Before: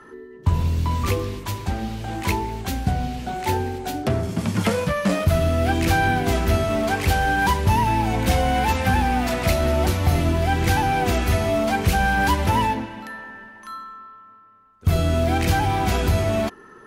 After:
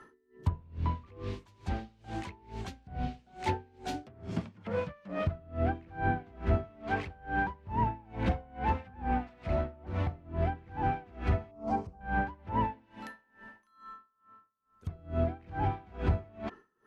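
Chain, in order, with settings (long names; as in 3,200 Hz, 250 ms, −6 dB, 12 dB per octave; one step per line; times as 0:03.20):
0:11.51–0:12.01: flat-topped bell 2,400 Hz −15 dB
treble cut that deepens with the level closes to 1,400 Hz, closed at −15.5 dBFS
tremolo with a sine in dB 2.3 Hz, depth 28 dB
level −6.5 dB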